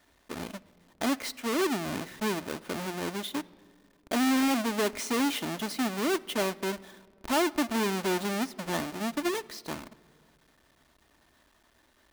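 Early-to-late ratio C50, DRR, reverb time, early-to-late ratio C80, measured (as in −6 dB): 21.0 dB, 10.0 dB, non-exponential decay, 22.5 dB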